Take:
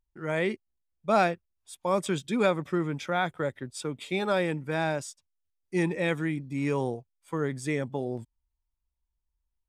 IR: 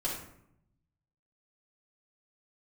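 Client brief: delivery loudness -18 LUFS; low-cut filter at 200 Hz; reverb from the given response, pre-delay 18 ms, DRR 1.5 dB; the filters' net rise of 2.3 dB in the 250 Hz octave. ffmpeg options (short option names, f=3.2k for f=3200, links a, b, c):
-filter_complex "[0:a]highpass=200,equalizer=f=250:t=o:g=5.5,asplit=2[a][b];[1:a]atrim=start_sample=2205,adelay=18[c];[b][c]afir=irnorm=-1:irlink=0,volume=-6dB[d];[a][d]amix=inputs=2:normalize=0,volume=7.5dB"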